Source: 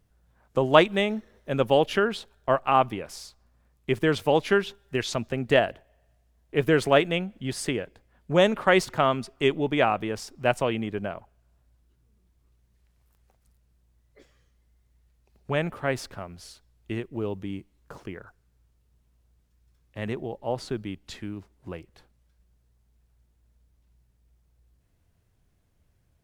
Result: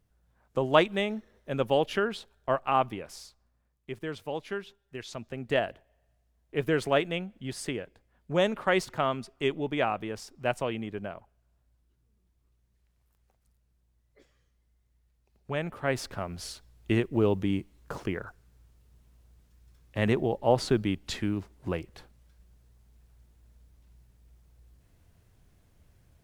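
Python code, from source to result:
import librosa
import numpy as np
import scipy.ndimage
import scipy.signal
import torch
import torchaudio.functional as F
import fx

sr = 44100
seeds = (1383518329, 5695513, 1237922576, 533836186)

y = fx.gain(x, sr, db=fx.line((3.2, -4.5), (3.9, -13.0), (4.96, -13.0), (5.66, -5.5), (15.62, -5.5), (16.42, 6.0)))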